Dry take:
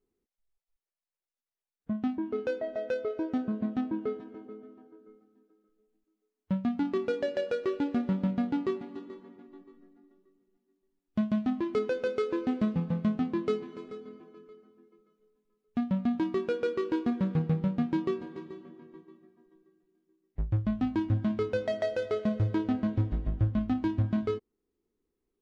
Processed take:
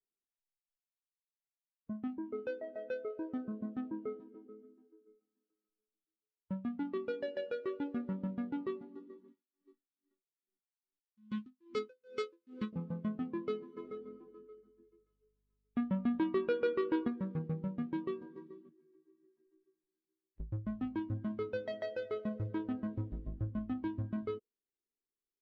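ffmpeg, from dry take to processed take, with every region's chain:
-filter_complex "[0:a]asettb=1/sr,asplit=3[a][b][c];[a]atrim=end=9.284[d];[b]atrim=start=9.28:end=12.73,asetpts=PTS-STARTPTS,afade=t=in:d=0.004:c=qsin,afade=t=out:st=3.446:d=0.004:c=qsin,asuperstop=centerf=670:order=12:qfactor=3.4,highshelf=f=2.3k:g=11.5,aeval=exprs='val(0)*pow(10,-33*(0.5-0.5*cos(2*PI*2.4*n/s))/20)':c=same[e];[c]atrim=start=12.726[f];[d][e]acrossfade=d=0.004:c1=hsin:c2=qsin[g];[g][f]acrossfade=d=0.004:c1=qsin:c2=hsin,asettb=1/sr,asplit=3[h][i][j];[h]atrim=end=13.774[k];[i]atrim=start=13.77:end=17.08,asetpts=PTS-STARTPTS,afade=t=in:d=0.004:c=qsin,afade=t=out:st=3.306:d=0.004:c=qsin,bass=f=250:g=-2,treble=f=4k:g=-4,acontrast=43,aeval=exprs='val(0)+0.00112*(sin(2*PI*50*n/s)+sin(2*PI*2*50*n/s)/2+sin(2*PI*3*50*n/s)/3+sin(2*PI*4*50*n/s)/4+sin(2*PI*5*50*n/s)/5)':c=same[l];[j]atrim=start=17.076[m];[k][l]acrossfade=d=0.004:c1=hsin:c2=qsin[n];[n][m]acrossfade=d=0.004:c1=qsin:c2=hsin,asettb=1/sr,asplit=3[o][p][q];[o]atrim=end=18.694[r];[p]atrim=start=18.69:end=20.4,asetpts=PTS-STARTPTS,afade=t=in:d=0.004:c=qsin,afade=t=out:st=1.706:d=0.004:c=qsin,acompressor=threshold=-56dB:ratio=4:attack=3.2:release=140:knee=1:detection=peak,equalizer=f=250:t=o:w=0.39:g=-5,asplit=2[s][t];[t]adelay=13,volume=-2.5dB[u];[s][u]amix=inputs=2:normalize=0,atrim=end_sample=75411[v];[q]atrim=start=20.396[w];[r][v]acrossfade=d=0.004:c1=hsin:c2=qsin[x];[x][w]acrossfade=d=0.004:c1=qsin:c2=hsin,equalizer=f=67:w=0.34:g=-5,afftdn=nr=14:nf=-45,equalizer=f=720:w=6.8:g=-9,volume=-6.5dB"

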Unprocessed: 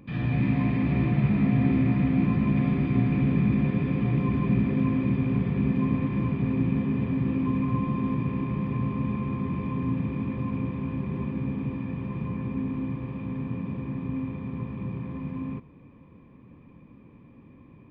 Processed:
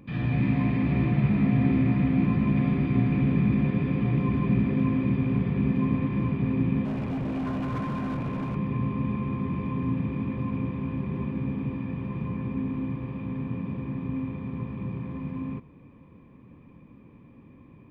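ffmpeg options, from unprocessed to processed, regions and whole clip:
-filter_complex "[0:a]asettb=1/sr,asplit=3[a][b][c];[a]atrim=end=6.854[d];[b]atrim=start=6.85:end=8.56,asetpts=PTS-STARTPTS,afade=t=in:d=0.004:c=qsin,afade=t=out:st=1.706:d=0.004:c=qsin,equalizer=f=1k:t=o:w=1.6:g=3.5,asoftclip=type=hard:threshold=-27dB[e];[c]atrim=start=8.556[f];[d][e]acrossfade=d=0.004:c1=hsin:c2=qsin[g];[g][f]acrossfade=d=0.004:c1=qsin:c2=hsin"

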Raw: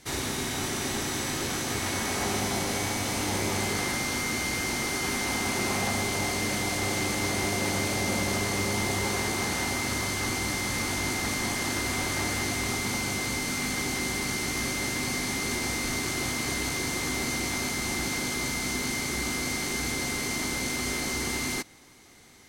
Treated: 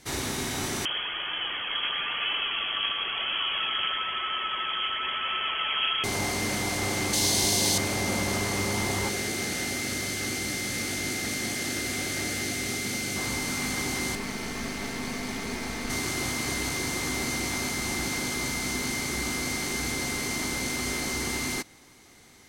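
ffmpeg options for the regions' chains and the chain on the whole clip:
-filter_complex "[0:a]asettb=1/sr,asplit=3[a][b][c];[a]atrim=end=0.854[d];[b]atrim=start=0.85:end=6.04,asetpts=PTS-STARTPTS,afade=t=in:d=0.004:c=qsin,afade=t=out:st=5.186:d=0.004:c=qsin,aphaser=in_gain=1:out_gain=1:delay=3:decay=0.35:speed=1:type=triangular,lowpass=f=2.9k:t=q:w=0.5098,lowpass=f=2.9k:t=q:w=0.6013,lowpass=f=2.9k:t=q:w=0.9,lowpass=f=2.9k:t=q:w=2.563,afreqshift=-3400[e];[c]atrim=start=6.036[f];[d][e]acrossfade=d=0.004:c1=hsin:c2=qsin[g];[g][f]acrossfade=d=0.004:c1=qsin:c2=hsin,asettb=1/sr,asplit=3[h][i][j];[h]atrim=end=7.134[k];[i]atrim=start=7.13:end=7.78,asetpts=PTS-STARTPTS,afade=t=in:d=0.004:c=qsin,afade=t=out:st=0.646:d=0.004:c=qsin,highshelf=f=2.9k:t=q:w=1.5:g=8,bandreject=f=1.3k:w=6.4[l];[j]atrim=start=7.776[m];[k][l]acrossfade=d=0.004:c1=hsin:c2=qsin[n];[n][m]acrossfade=d=0.004:c1=qsin:c2=hsin,asettb=1/sr,asplit=3[o][p][q];[o]atrim=end=9.094[r];[p]atrim=start=9.09:end=13.16,asetpts=PTS-STARTPTS,afade=t=in:d=0.004:c=qsin,afade=t=out:st=4.066:d=0.004:c=qsin,highpass=f=130:p=1,equalizer=f=990:w=2.4:g=-13.5[s];[q]atrim=start=13.156[t];[r][s]acrossfade=d=0.004:c1=hsin:c2=qsin[u];[u][t]acrossfade=d=0.004:c1=qsin:c2=hsin,asettb=1/sr,asplit=3[v][w][x];[v]atrim=end=14.154[y];[w]atrim=start=14.15:end=15.9,asetpts=PTS-STARTPTS,afade=t=in:d=0.004:c=qsin,afade=t=out:st=1.746:d=0.004:c=qsin,highshelf=f=4.5k:g=-10,aeval=exprs='clip(val(0),-1,0.0168)':c=same,aecho=1:1:4.5:0.46,atrim=end_sample=77175[z];[x]atrim=start=15.896[aa];[y][z]acrossfade=d=0.004:c1=hsin:c2=qsin[ab];[ab][aa]acrossfade=d=0.004:c1=qsin:c2=hsin"

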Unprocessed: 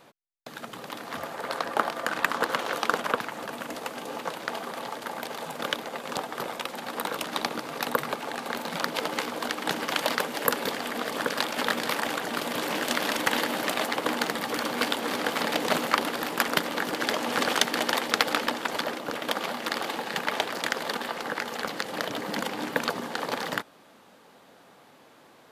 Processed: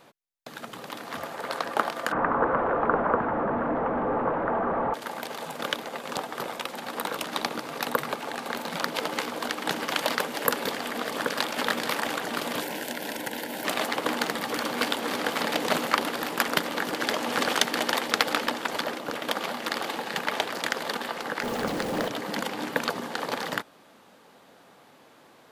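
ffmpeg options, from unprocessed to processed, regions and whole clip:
-filter_complex "[0:a]asettb=1/sr,asplit=3[a][b][c];[a]atrim=end=2.124[d];[b]atrim=start=2.12:end=4.94,asetpts=PTS-STARTPTS,afade=t=in:d=0.004:c=qsin,afade=t=out:st=2.816:d=0.004:c=qsin,aeval=exprs='val(0)+0.5*0.0841*sgn(val(0))':c=same,lowpass=f=1.4k:w=0.5412,lowpass=f=1.4k:w=1.3066[e];[c]atrim=start=4.936[f];[d][e]acrossfade=d=0.004:c1=hsin:c2=qsin[g];[g][f]acrossfade=d=0.004:c1=qsin:c2=hsin,asettb=1/sr,asplit=3[h][i][j];[h]atrim=end=12.604[k];[i]atrim=start=12.6:end=13.65,asetpts=PTS-STARTPTS,afade=t=in:d=0.004:c=qsin,afade=t=out:st=1.046:d=0.004:c=qsin,highshelf=f=8.3k:g=12,acrossover=split=600|2400[l][m][n];[l]acompressor=threshold=-36dB:ratio=4[o];[m]acompressor=threshold=-35dB:ratio=4[p];[n]acompressor=threshold=-39dB:ratio=4[q];[o][p][q]amix=inputs=3:normalize=0,asuperstop=centerf=1200:order=4:qfactor=3.7[r];[j]atrim=start=13.646[s];[k][r]acrossfade=d=0.004:c1=hsin:c2=qsin[t];[t][s]acrossfade=d=0.004:c1=qsin:c2=hsin,asettb=1/sr,asplit=3[u][v][w];[u]atrim=end=21.434[x];[v]atrim=start=21.43:end=22.08,asetpts=PTS-STARTPTS,afade=t=in:d=0.004:c=qsin,afade=t=out:st=0.646:d=0.004:c=qsin,aeval=exprs='val(0)+0.5*0.0316*sgn(val(0))':c=same,tiltshelf=f=730:g=5.5[y];[w]atrim=start=22.076[z];[x][y]acrossfade=d=0.004:c1=hsin:c2=qsin[aa];[aa][z]acrossfade=d=0.004:c1=qsin:c2=hsin"

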